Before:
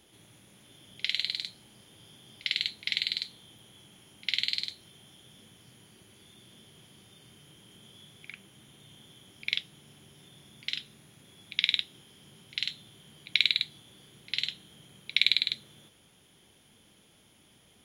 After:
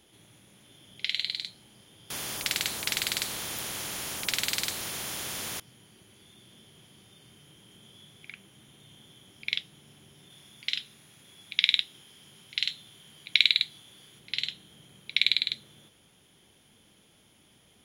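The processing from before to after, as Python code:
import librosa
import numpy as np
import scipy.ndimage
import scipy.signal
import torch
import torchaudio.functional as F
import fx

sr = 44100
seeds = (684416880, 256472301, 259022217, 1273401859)

y = fx.spectral_comp(x, sr, ratio=4.0, at=(2.1, 5.6))
y = fx.tilt_shelf(y, sr, db=-3.5, hz=740.0, at=(10.3, 14.19))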